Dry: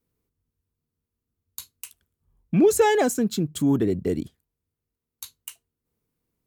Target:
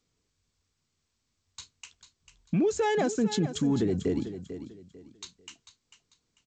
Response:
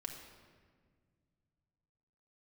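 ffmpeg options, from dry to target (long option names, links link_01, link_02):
-filter_complex "[0:a]asplit=3[link_01][link_02][link_03];[link_01]afade=type=out:start_time=1.72:duration=0.02[link_04];[link_02]acompressor=threshold=-28dB:ratio=2,afade=type=in:start_time=1.72:duration=0.02,afade=type=out:start_time=3.17:duration=0.02[link_05];[link_03]afade=type=in:start_time=3.17:duration=0.02[link_06];[link_04][link_05][link_06]amix=inputs=3:normalize=0,alimiter=limit=-19dB:level=0:latency=1:release=18,asettb=1/sr,asplit=3[link_07][link_08][link_09];[link_07]atrim=end=4.194[link_10];[link_08]atrim=start=4.19:end=5.35,asetpts=PTS-STARTPTS,afade=type=in:duration=0.004:curve=qsin,afade=type=out:start_time=1.156:duration=0.004:curve=qsin,acrossover=split=260|3000[link_11][link_12][link_13];[link_11]acompressor=threshold=-39dB:ratio=2.5[link_14];[link_14][link_12][link_13]amix=inputs=3:normalize=0[link_15];[link_09]atrim=start=5.346[link_16];[link_10][link_15]acrossfade=duration=0.004:curve1=hsin:curve2=qsin[link_17];[link_17][link_16]acrossfade=duration=0.004:curve1=qsin:curve2=hsin,aecho=1:1:445|890|1335:0.266|0.0745|0.0209" -ar 16000 -c:a g722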